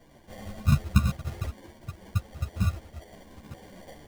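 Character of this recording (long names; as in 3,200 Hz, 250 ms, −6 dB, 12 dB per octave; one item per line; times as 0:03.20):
aliases and images of a low sample rate 1,300 Hz, jitter 0%
a shimmering, thickened sound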